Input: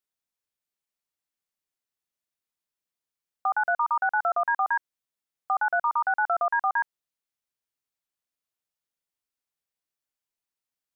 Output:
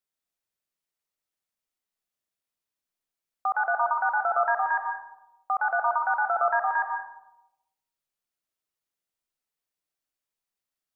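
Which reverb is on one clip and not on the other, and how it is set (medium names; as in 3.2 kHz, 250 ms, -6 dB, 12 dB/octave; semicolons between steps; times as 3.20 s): algorithmic reverb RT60 0.95 s, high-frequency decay 0.3×, pre-delay 75 ms, DRR 3 dB; trim -1 dB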